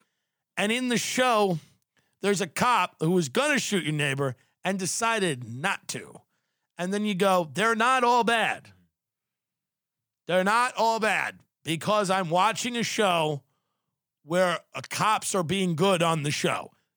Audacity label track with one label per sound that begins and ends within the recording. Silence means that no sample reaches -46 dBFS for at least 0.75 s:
10.280000	13.390000	sound